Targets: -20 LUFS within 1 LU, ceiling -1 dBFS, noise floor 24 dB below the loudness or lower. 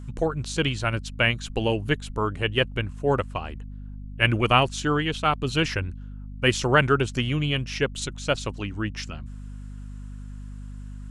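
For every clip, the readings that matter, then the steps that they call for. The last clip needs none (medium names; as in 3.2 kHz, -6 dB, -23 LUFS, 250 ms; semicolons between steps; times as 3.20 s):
hum 50 Hz; highest harmonic 250 Hz; hum level -35 dBFS; loudness -25.0 LUFS; peak level -3.0 dBFS; loudness target -20.0 LUFS
-> hum notches 50/100/150/200/250 Hz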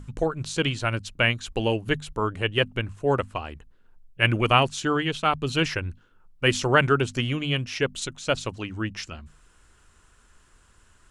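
hum not found; loudness -25.0 LUFS; peak level -3.0 dBFS; loudness target -20.0 LUFS
-> trim +5 dB; peak limiter -1 dBFS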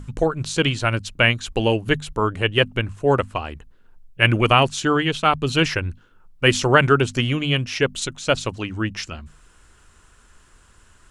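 loudness -20.5 LUFS; peak level -1.0 dBFS; noise floor -54 dBFS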